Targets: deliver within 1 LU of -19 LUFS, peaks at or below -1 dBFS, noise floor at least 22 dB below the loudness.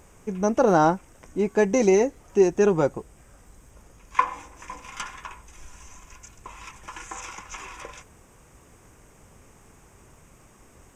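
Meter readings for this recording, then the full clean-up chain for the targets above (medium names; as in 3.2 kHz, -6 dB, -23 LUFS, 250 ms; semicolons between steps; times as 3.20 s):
tick rate 19 per s; loudness -23.0 LUFS; peak level -5.5 dBFS; loudness target -19.0 LUFS
-> de-click; trim +4 dB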